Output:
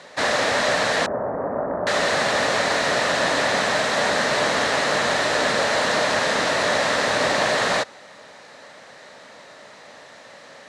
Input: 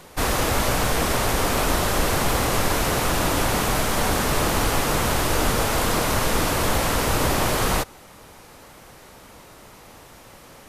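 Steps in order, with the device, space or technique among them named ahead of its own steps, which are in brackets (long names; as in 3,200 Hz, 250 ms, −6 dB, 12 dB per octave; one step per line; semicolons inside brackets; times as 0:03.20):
0:01.06–0:01.87: Bessel low-pass filter 710 Hz, order 8
full-range speaker at full volume (highs frequency-modulated by the lows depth 0.45 ms; loudspeaker in its box 220–7,800 Hz, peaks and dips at 340 Hz −6 dB, 600 Hz +8 dB, 1,800 Hz +10 dB, 4,000 Hz +7 dB)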